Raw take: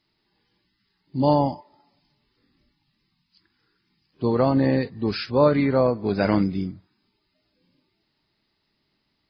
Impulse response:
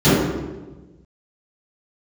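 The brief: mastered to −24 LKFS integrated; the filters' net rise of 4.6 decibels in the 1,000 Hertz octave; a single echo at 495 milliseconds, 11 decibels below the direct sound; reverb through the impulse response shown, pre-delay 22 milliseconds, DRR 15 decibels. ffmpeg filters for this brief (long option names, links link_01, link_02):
-filter_complex "[0:a]equalizer=frequency=1000:width_type=o:gain=5.5,aecho=1:1:495:0.282,asplit=2[link_01][link_02];[1:a]atrim=start_sample=2205,adelay=22[link_03];[link_02][link_03]afir=irnorm=-1:irlink=0,volume=-42dB[link_04];[link_01][link_04]amix=inputs=2:normalize=0,volume=-3.5dB"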